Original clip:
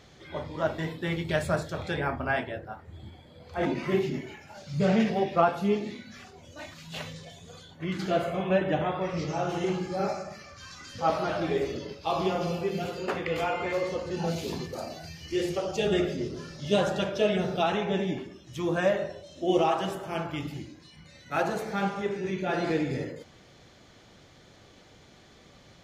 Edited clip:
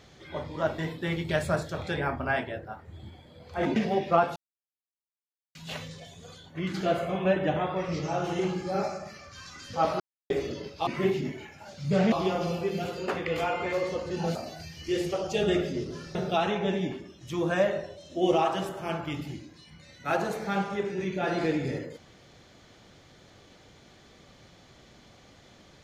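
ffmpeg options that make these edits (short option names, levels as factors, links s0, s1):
-filter_complex "[0:a]asplit=10[s0][s1][s2][s3][s4][s5][s6][s7][s8][s9];[s0]atrim=end=3.762[s10];[s1]atrim=start=5.008:end=5.61,asetpts=PTS-STARTPTS,afade=t=out:st=0.598:d=0.004:c=hsin[s11];[s2]atrim=start=5.61:end=6.8,asetpts=PTS-STARTPTS,volume=0[s12];[s3]atrim=start=6.8:end=11.25,asetpts=PTS-STARTPTS,afade=t=in:d=0.004:c=hsin,afade=t=out:st=4.446:d=0.004:c=hsin[s13];[s4]atrim=start=11.25:end=11.55,asetpts=PTS-STARTPTS,volume=0[s14];[s5]atrim=start=11.55:end=12.122,asetpts=PTS-STARTPTS,afade=t=in:d=0.004:c=hsin[s15];[s6]atrim=start=3.758:end=5.012[s16];[s7]atrim=start=12.118:end=14.352[s17];[s8]atrim=start=14.788:end=16.592[s18];[s9]atrim=start=17.408[s19];[s11][s12][s13][s14][s15]concat=n=5:v=0:a=1[s20];[s10][s20]acrossfade=d=0.004:c1=hsin:c2=hsin[s21];[s21][s16]acrossfade=d=0.004:c1=hsin:c2=hsin[s22];[s22][s17]acrossfade=d=0.004:c1=hsin:c2=hsin[s23];[s23][s18]acrossfade=d=0.004:c1=hsin:c2=hsin[s24];[s24][s19]acrossfade=d=0.004:c1=hsin:c2=hsin"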